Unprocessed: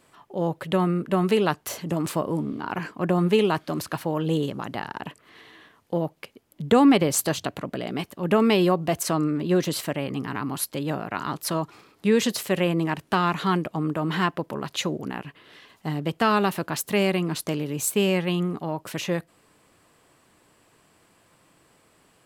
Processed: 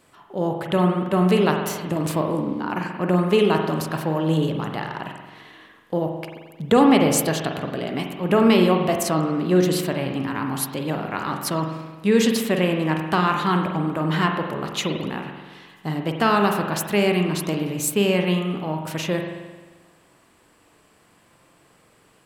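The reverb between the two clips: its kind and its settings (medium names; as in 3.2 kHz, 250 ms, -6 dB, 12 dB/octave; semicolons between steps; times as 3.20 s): spring tank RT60 1.3 s, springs 44 ms, chirp 75 ms, DRR 3 dB; trim +1.5 dB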